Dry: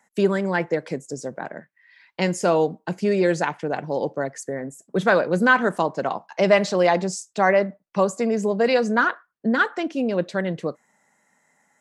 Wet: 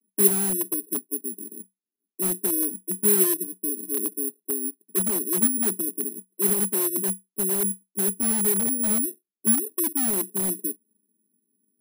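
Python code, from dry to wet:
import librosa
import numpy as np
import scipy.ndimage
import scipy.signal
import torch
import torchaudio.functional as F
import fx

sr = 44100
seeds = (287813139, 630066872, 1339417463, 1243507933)

p1 = scipy.signal.sosfilt(scipy.signal.cheby1(5, 1.0, [190.0, 420.0], 'bandpass', fs=sr, output='sos'), x)
p2 = (np.mod(10.0 ** (23.5 / 20.0) * p1 + 1.0, 2.0) - 1.0) / 10.0 ** (23.5 / 20.0)
p3 = p1 + (p2 * librosa.db_to_amplitude(-6.0))
p4 = (np.kron(p3[::4], np.eye(4)[0]) * 4)[:len(p3)]
y = p4 * librosa.db_to_amplitude(-4.5)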